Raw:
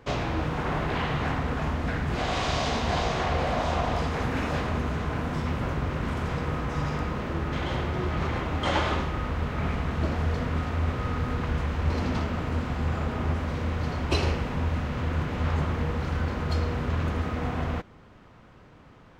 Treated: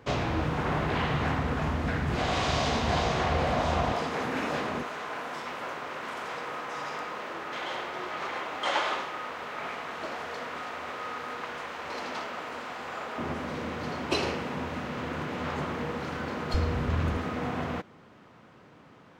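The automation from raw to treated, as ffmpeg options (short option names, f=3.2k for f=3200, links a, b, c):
-af "asetnsamples=n=441:p=0,asendcmd='3.92 highpass f 240;4.83 highpass f 570;13.18 highpass f 210;16.54 highpass f 51;17.17 highpass f 150',highpass=61"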